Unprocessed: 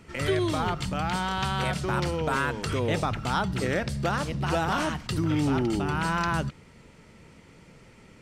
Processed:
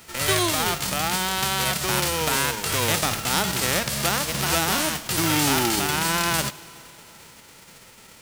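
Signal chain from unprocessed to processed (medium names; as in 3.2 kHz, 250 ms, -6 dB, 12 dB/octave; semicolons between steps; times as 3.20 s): formants flattened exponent 0.3; Schroeder reverb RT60 3.6 s, combs from 27 ms, DRR 18.5 dB; trim +3.5 dB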